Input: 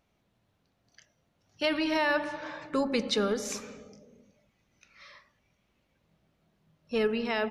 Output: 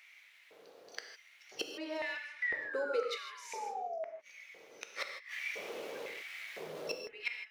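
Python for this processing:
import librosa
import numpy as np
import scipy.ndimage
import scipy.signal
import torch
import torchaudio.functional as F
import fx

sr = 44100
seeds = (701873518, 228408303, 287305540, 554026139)

y = fx.fade_out_tail(x, sr, length_s=0.74)
y = fx.steep_highpass(y, sr, hz=320.0, slope=36, at=(2.93, 3.58))
y = fx.leveller(y, sr, passes=1)
y = fx.spec_paint(y, sr, seeds[0], shape='fall', start_s=2.42, length_s=1.71, low_hz=590.0, high_hz=2000.0, level_db=-27.0)
y = fx.gate_flip(y, sr, shuts_db=-25.0, range_db=-32)
y = fx.power_curve(y, sr, exponent=0.7, at=(5.07, 6.97))
y = fx.gate_flip(y, sr, shuts_db=-37.0, range_db=-31)
y = fx.filter_lfo_highpass(y, sr, shape='square', hz=0.99, low_hz=460.0, high_hz=2100.0, q=5.7)
y = fx.rev_gated(y, sr, seeds[1], gate_ms=180, shape='flat', drr_db=4.5)
y = y * 10.0 ** (14.0 / 20.0)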